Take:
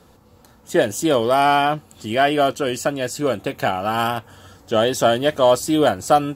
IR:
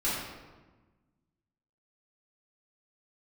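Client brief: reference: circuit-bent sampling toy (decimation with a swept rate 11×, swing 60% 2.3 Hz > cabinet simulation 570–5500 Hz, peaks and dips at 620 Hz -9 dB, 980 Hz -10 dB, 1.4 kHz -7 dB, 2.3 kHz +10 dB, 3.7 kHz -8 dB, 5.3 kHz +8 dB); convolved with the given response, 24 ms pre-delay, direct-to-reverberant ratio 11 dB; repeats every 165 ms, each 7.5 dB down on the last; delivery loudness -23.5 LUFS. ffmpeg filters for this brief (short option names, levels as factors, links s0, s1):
-filter_complex "[0:a]aecho=1:1:165|330|495|660|825:0.422|0.177|0.0744|0.0312|0.0131,asplit=2[s0][s1];[1:a]atrim=start_sample=2205,adelay=24[s2];[s1][s2]afir=irnorm=-1:irlink=0,volume=0.1[s3];[s0][s3]amix=inputs=2:normalize=0,acrusher=samples=11:mix=1:aa=0.000001:lfo=1:lforange=6.6:lforate=2.3,highpass=570,equalizer=f=620:t=q:w=4:g=-9,equalizer=f=980:t=q:w=4:g=-10,equalizer=f=1400:t=q:w=4:g=-7,equalizer=f=2300:t=q:w=4:g=10,equalizer=f=3700:t=q:w=4:g=-8,equalizer=f=5300:t=q:w=4:g=8,lowpass=f=5500:w=0.5412,lowpass=f=5500:w=1.3066,volume=0.841"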